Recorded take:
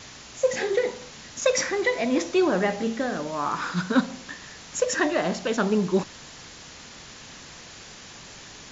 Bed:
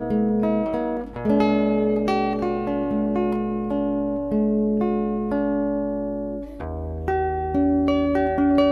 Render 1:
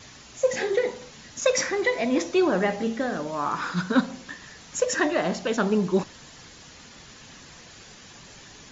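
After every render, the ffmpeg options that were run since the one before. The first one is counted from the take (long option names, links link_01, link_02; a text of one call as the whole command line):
ffmpeg -i in.wav -af "afftdn=noise_reduction=6:noise_floor=-45" out.wav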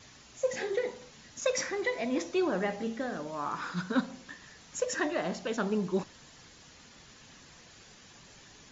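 ffmpeg -i in.wav -af "volume=-7.5dB" out.wav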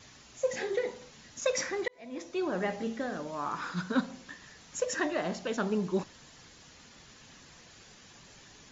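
ffmpeg -i in.wav -filter_complex "[0:a]asplit=2[link_01][link_02];[link_01]atrim=end=1.88,asetpts=PTS-STARTPTS,afade=type=out:start_time=1.876:duration=0.004:curve=hsin[link_03];[link_02]atrim=start=1.88,asetpts=PTS-STARTPTS,afade=type=in:duration=0.81[link_04];[link_03][link_04]concat=n=2:v=0:a=1" out.wav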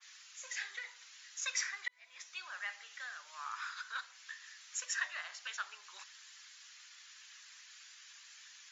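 ffmpeg -i in.wav -af "highpass=frequency=1400:width=0.5412,highpass=frequency=1400:width=1.3066,adynamicequalizer=threshold=0.00355:dfrequency=1800:dqfactor=0.7:tfrequency=1800:tqfactor=0.7:attack=5:release=100:ratio=0.375:range=2.5:mode=cutabove:tftype=highshelf" out.wav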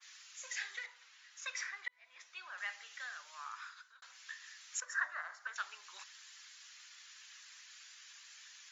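ffmpeg -i in.wav -filter_complex "[0:a]asettb=1/sr,asplit=3[link_01][link_02][link_03];[link_01]atrim=end=0.864[link_04];[link_02]atrim=start=0.86:end=2.58,asetpts=PTS-STARTPTS,afade=type=in:duration=0.004:curve=qsin,afade=type=out:start_time=1.716:duration=0.004:curve=qsin,lowpass=frequency=2200:poles=1[link_05];[link_03]atrim=start=2.576[link_06];[link_04][link_05]acrossfade=duration=0.004:curve1=hsin:curve2=qsin[link_07];[link_07][link_06]acrossfade=duration=0.004:curve1=qsin:curve2=hsin,asettb=1/sr,asplit=3[link_08][link_09][link_10];[link_08]atrim=end=4.804[link_11];[link_09]atrim=start=4.8:end=5.56,asetpts=PTS-STARTPTS,afade=type=in:duration=0.004:curve=qsin,afade=type=out:start_time=0.756:duration=0.004:curve=qsin,highshelf=frequency=2000:width_type=q:width=3:gain=-10.5[link_12];[link_10]atrim=start=5.556[link_13];[link_11][link_12]acrossfade=duration=0.004:curve1=hsin:curve2=qsin[link_14];[link_14][link_13]acrossfade=duration=0.004:curve1=qsin:curve2=hsin,asplit=2[link_15][link_16];[link_15]atrim=end=4.02,asetpts=PTS-STARTPTS,afade=type=out:start_time=3.22:duration=0.8[link_17];[link_16]atrim=start=4.02,asetpts=PTS-STARTPTS,afade=type=in:duration=0.004:curve=hsin[link_18];[link_17][link_18]concat=n=2:v=0:a=1" out.wav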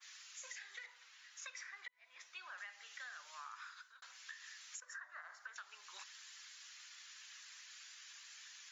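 ffmpeg -i in.wav -af "alimiter=level_in=9dB:limit=-24dB:level=0:latency=1:release=374,volume=-9dB,acompressor=threshold=-47dB:ratio=6" out.wav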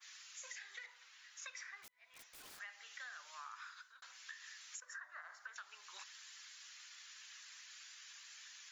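ffmpeg -i in.wav -filter_complex "[0:a]asplit=3[link_01][link_02][link_03];[link_01]afade=type=out:start_time=1.82:duration=0.02[link_04];[link_02]aeval=exprs='(mod(376*val(0)+1,2)-1)/376':channel_layout=same,afade=type=in:start_time=1.82:duration=0.02,afade=type=out:start_time=2.58:duration=0.02[link_05];[link_03]afade=type=in:start_time=2.58:duration=0.02[link_06];[link_04][link_05][link_06]amix=inputs=3:normalize=0" out.wav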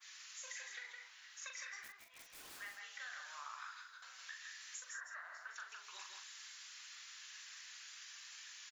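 ffmpeg -i in.wav -filter_complex "[0:a]asplit=2[link_01][link_02];[link_02]adelay=41,volume=-6dB[link_03];[link_01][link_03]amix=inputs=2:normalize=0,aecho=1:1:162:0.596" out.wav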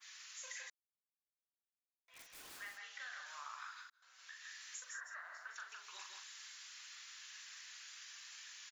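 ffmpeg -i in.wav -filter_complex "[0:a]asettb=1/sr,asplit=3[link_01][link_02][link_03];[link_01]atrim=end=2.784[link_04];[link_02]atrim=start=2.78:end=3.26,asetpts=PTS-STARTPTS,afade=type=in:duration=0.004:curve=qsin,afade=type=out:start_time=0.476:duration=0.004:curve=qsin,lowpass=7300[link_05];[link_03]atrim=start=3.256[link_06];[link_04][link_05]acrossfade=duration=0.004:curve1=hsin:curve2=qsin[link_07];[link_07][link_06]acrossfade=duration=0.004:curve1=qsin:curve2=hsin,asplit=4[link_08][link_09][link_10][link_11];[link_08]atrim=end=0.7,asetpts=PTS-STARTPTS,afade=type=out:start_time=0.696:duration=0.004:curve=hsin[link_12];[link_09]atrim=start=0.7:end=2.08,asetpts=PTS-STARTPTS,volume=0[link_13];[link_10]atrim=start=2.08:end=3.9,asetpts=PTS-STARTPTS,afade=type=in:duration=0.004:curve=hsin,afade=type=out:start_time=1.816:duration=0.004:curve=hsin[link_14];[link_11]atrim=start=3.9,asetpts=PTS-STARTPTS,afade=type=in:duration=0.64[link_15];[link_12][link_13][link_14][link_15]concat=n=4:v=0:a=1" out.wav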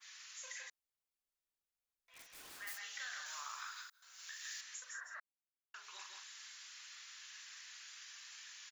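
ffmpeg -i in.wav -filter_complex "[0:a]asplit=3[link_01][link_02][link_03];[link_01]afade=type=out:start_time=0.53:duration=0.02[link_04];[link_02]asubboost=boost=8.5:cutoff=65,afade=type=in:start_time=0.53:duration=0.02,afade=type=out:start_time=2.13:duration=0.02[link_05];[link_03]afade=type=in:start_time=2.13:duration=0.02[link_06];[link_04][link_05][link_06]amix=inputs=3:normalize=0,asettb=1/sr,asplit=3[link_07][link_08][link_09];[link_07]atrim=end=2.674[link_10];[link_08]atrim=start=2.67:end=4.61,asetpts=PTS-STARTPTS,afade=type=in:duration=0.004:curve=qsin,afade=type=out:start_time=1.936:duration=0.004:curve=qsin,aemphasis=mode=production:type=75kf[link_11];[link_09]atrim=start=4.606[link_12];[link_10][link_11]acrossfade=duration=0.004:curve1=hsin:curve2=qsin[link_13];[link_13][link_12]acrossfade=duration=0.004:curve1=qsin:curve2=hsin,asplit=3[link_14][link_15][link_16];[link_14]atrim=end=5.2,asetpts=PTS-STARTPTS,afade=type=out:start_time=5.196:duration=0.004:curve=hsin[link_17];[link_15]atrim=start=5.2:end=5.74,asetpts=PTS-STARTPTS,volume=0[link_18];[link_16]atrim=start=5.74,asetpts=PTS-STARTPTS,afade=type=in:duration=0.004:curve=hsin[link_19];[link_17][link_18][link_19]concat=n=3:v=0:a=1" out.wav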